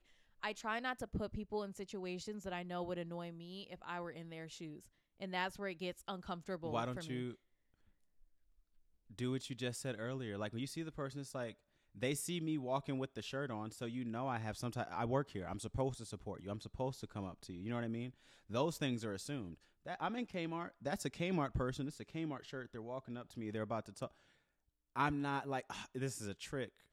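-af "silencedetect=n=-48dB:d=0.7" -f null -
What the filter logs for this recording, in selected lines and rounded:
silence_start: 7.33
silence_end: 9.11 | silence_duration: 1.77
silence_start: 24.07
silence_end: 24.96 | silence_duration: 0.88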